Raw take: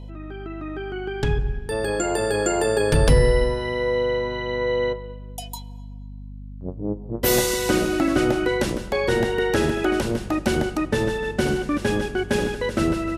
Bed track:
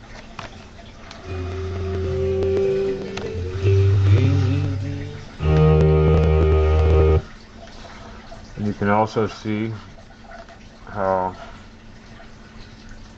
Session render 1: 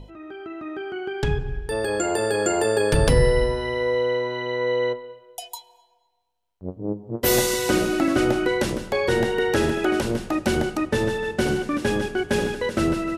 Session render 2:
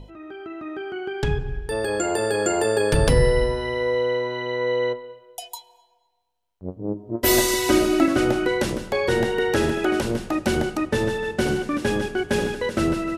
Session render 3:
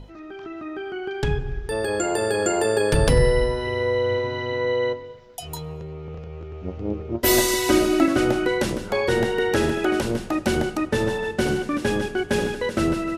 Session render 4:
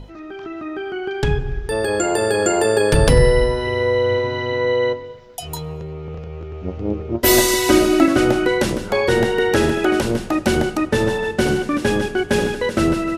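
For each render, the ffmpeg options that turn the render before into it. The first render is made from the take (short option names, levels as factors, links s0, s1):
-af "bandreject=f=50:t=h:w=6,bandreject=f=100:t=h:w=6,bandreject=f=150:t=h:w=6,bandreject=f=200:t=h:w=6,bandreject=f=250:t=h:w=6,bandreject=f=300:t=h:w=6"
-filter_complex "[0:a]asettb=1/sr,asplit=3[s0][s1][s2];[s0]atrim=end=6.944[s3];[s1]atrim=start=6.94:end=8.06,asetpts=PTS-STARTPTS,afade=t=in:d=0.004:c=qsin,afade=t=out:st=1.116:d=0.004:c=qsin,aecho=1:1:3.1:0.65,atrim=end_sample=49392[s4];[s2]atrim=start=8.056[s5];[s3][s4]acrossfade=d=0.004:c1=hsin:c2=qsin[s6];[s6][s5]acrossfade=d=0.004:c1=qsin:c2=hsin"
-filter_complex "[1:a]volume=0.1[s0];[0:a][s0]amix=inputs=2:normalize=0"
-af "volume=1.68"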